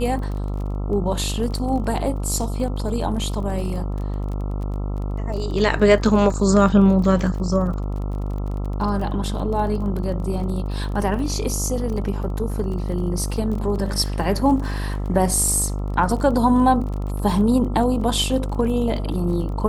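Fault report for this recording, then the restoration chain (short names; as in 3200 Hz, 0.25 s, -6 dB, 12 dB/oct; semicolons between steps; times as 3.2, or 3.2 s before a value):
buzz 50 Hz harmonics 27 -25 dBFS
crackle 29/s -30 dBFS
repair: de-click; de-hum 50 Hz, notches 27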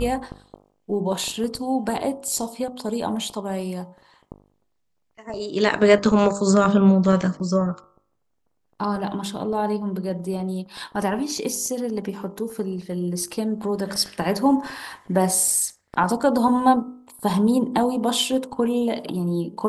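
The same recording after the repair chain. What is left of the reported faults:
none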